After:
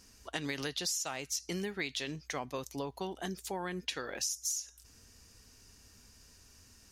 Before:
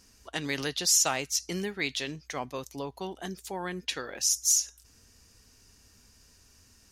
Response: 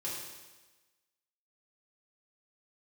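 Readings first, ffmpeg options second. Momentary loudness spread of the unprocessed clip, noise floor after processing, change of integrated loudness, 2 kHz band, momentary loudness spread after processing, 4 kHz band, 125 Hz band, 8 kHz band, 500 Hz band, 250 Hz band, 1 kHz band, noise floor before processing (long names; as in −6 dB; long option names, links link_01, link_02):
16 LU, −61 dBFS, −8.0 dB, −5.0 dB, 7 LU, −7.0 dB, −3.5 dB, −10.5 dB, −3.5 dB, −3.5 dB, −5.0 dB, −61 dBFS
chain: -af "acompressor=threshold=-32dB:ratio=12"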